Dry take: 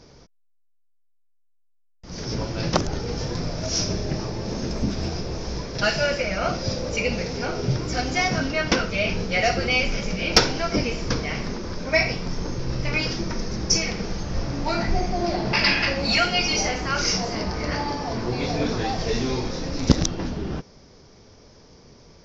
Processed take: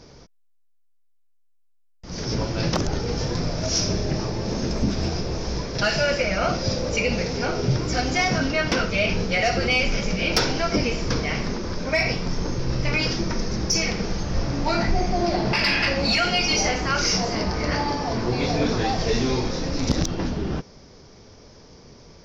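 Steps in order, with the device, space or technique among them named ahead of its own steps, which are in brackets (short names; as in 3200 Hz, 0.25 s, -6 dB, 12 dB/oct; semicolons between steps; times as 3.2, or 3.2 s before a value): soft clipper into limiter (soft clip -6.5 dBFS, distortion -24 dB; limiter -14.5 dBFS, peak gain reduction 6.5 dB); gain +2.5 dB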